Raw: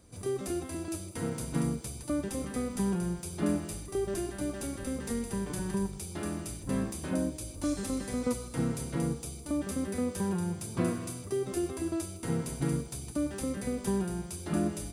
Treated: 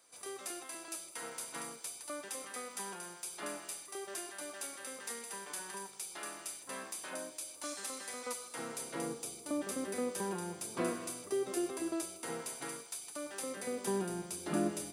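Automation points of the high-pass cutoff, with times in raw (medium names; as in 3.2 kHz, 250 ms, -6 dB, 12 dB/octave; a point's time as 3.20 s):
8.36 s 860 Hz
9.22 s 370 Hz
11.91 s 370 Hz
12.98 s 1 kHz
14.10 s 260 Hz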